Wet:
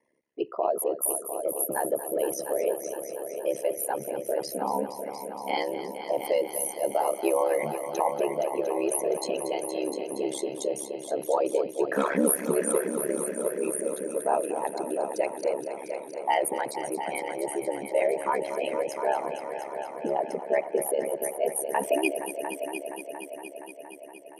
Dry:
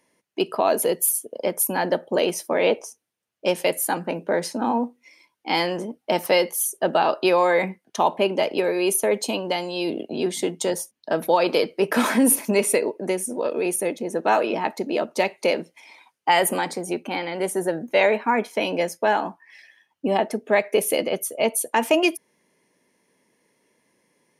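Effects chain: resonances exaggerated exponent 2; multi-head delay 234 ms, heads all three, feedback 64%, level -13 dB; ring modulator 35 Hz; trim -3.5 dB

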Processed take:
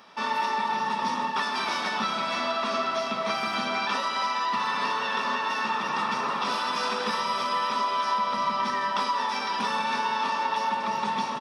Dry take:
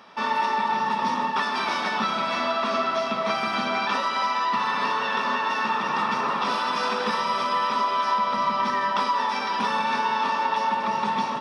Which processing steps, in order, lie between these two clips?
treble shelf 4.8 kHz +8 dB; speakerphone echo 340 ms, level -21 dB; trim -3.5 dB

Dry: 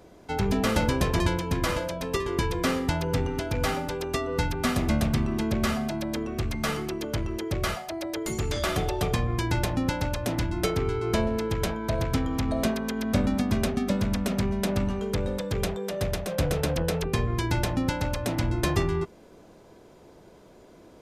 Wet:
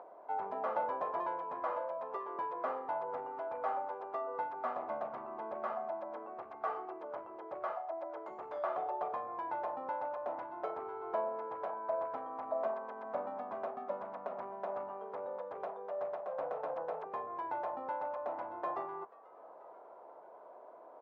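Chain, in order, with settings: octave divider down 2 oct, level -6 dB; 6.50–7.01 s: comb 2.6 ms, depth 52%; upward compressor, threshold -35 dBFS; Butterworth band-pass 820 Hz, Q 1.5; frequency-shifting echo 486 ms, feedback 51%, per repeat +100 Hz, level -23.5 dB; trim -2 dB

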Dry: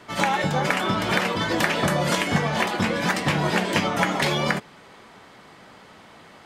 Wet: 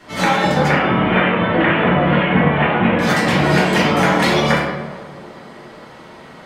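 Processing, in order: 0.68–2.99 s: steep low-pass 3.1 kHz 48 dB/octave; tape echo 432 ms, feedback 81%, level -20 dB, low-pass 1 kHz; reverberation RT60 1.3 s, pre-delay 3 ms, DRR -7.5 dB; trim -1 dB

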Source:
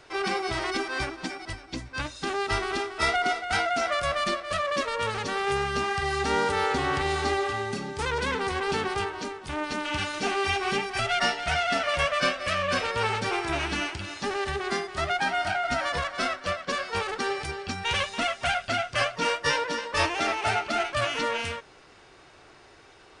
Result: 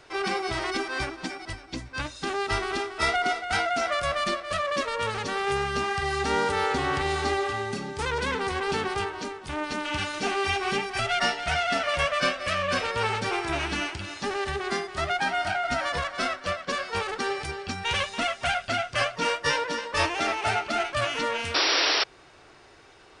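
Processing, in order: painted sound noise, 21.54–22.04 s, 270–5800 Hz -23 dBFS

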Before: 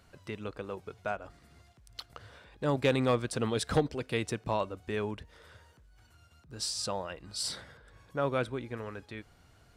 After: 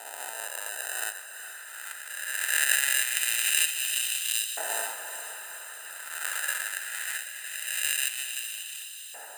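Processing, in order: reverse spectral sustain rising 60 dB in 1.90 s; sample-and-hold 41×; tilt shelf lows -6.5 dB, about 740 Hz; on a send: echo that smears into a reverb 463 ms, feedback 68%, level -10 dB; on the sum: LFO high-pass saw up 0.21 Hz 790–3200 Hz; speed mistake 24 fps film run at 25 fps; resonant high shelf 6.7 kHz +6.5 dB, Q 3; trim -2.5 dB

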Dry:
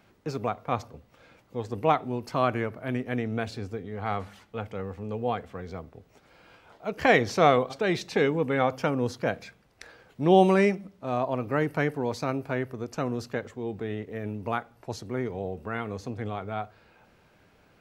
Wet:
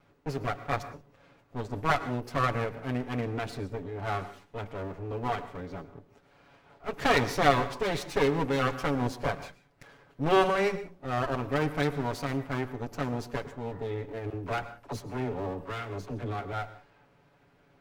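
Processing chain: comb filter that takes the minimum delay 7.1 ms; 13.64–13.93 s: spectral replace 960–2000 Hz; 14.30–16.53 s: phase dispersion lows, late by 40 ms, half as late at 460 Hz; reverberation, pre-delay 98 ms, DRR 14 dB; tape noise reduction on one side only decoder only

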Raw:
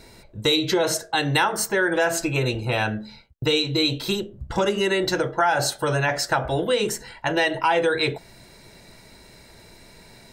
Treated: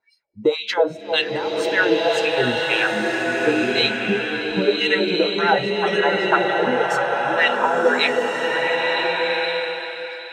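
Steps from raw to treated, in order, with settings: LFO band-pass sine 1.9 Hz 240–3000 Hz; spectral noise reduction 29 dB; repeats whose band climbs or falls 318 ms, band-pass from 610 Hz, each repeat 1.4 oct, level -5.5 dB; swelling reverb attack 1460 ms, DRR -0.5 dB; trim +8.5 dB

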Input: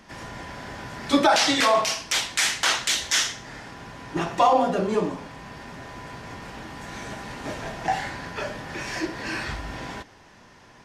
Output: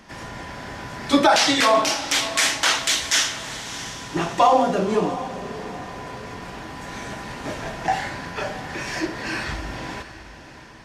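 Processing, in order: echo that smears into a reverb 649 ms, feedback 41%, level -13 dB; trim +2.5 dB

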